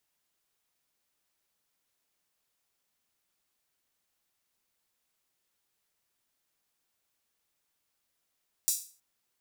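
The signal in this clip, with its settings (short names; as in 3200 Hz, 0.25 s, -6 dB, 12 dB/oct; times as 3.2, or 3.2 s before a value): open hi-hat length 0.32 s, high-pass 6400 Hz, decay 0.39 s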